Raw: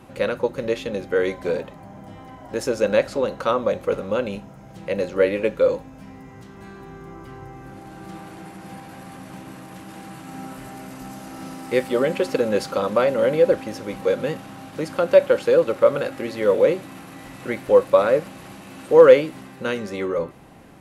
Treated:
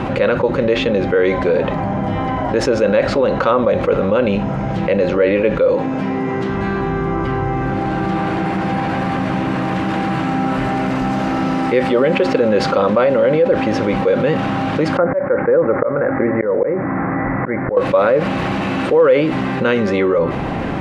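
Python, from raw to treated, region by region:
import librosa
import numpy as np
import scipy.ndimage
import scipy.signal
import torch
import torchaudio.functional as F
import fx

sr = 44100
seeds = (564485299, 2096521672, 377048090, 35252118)

y = fx.chain(x, sr, fx.highpass(hz=160.0, slope=12),
    fx.peak_eq(hz=370.0, db=6.5, octaves=0.39), at=(5.74, 6.5))
y = fx.chain(y, sr, fx.auto_swell(attack_ms=379.0),
    fx.steep_lowpass(hz=2100.0, slope=72), at=(14.97, 17.77))
y = scipy.signal.sosfilt(scipy.signal.butter(2, 3000.0, 'lowpass', fs=sr, output='sos'), y)
y = fx.env_flatten(y, sr, amount_pct=70)
y = F.gain(torch.from_numpy(y), -3.0).numpy()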